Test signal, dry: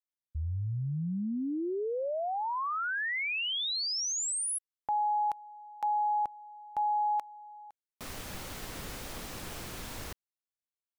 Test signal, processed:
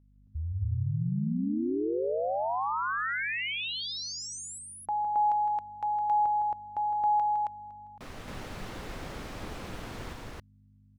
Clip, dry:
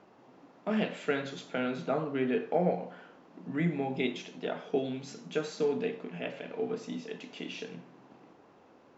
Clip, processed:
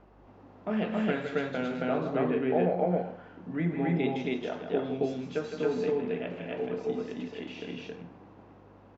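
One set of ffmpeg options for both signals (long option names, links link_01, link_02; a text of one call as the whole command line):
ffmpeg -i in.wav -af "aemphasis=mode=reproduction:type=75kf,aeval=exprs='val(0)+0.001*(sin(2*PI*50*n/s)+sin(2*PI*2*50*n/s)/2+sin(2*PI*3*50*n/s)/3+sin(2*PI*4*50*n/s)/4+sin(2*PI*5*50*n/s)/5)':channel_layout=same,aecho=1:1:160.3|271.1:0.398|1" out.wav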